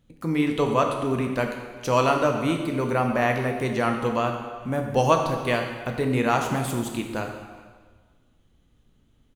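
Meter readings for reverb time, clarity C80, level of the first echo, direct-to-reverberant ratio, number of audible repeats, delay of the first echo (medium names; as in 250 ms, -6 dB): 1.5 s, 6.5 dB, -22.5 dB, 3.0 dB, 1, 411 ms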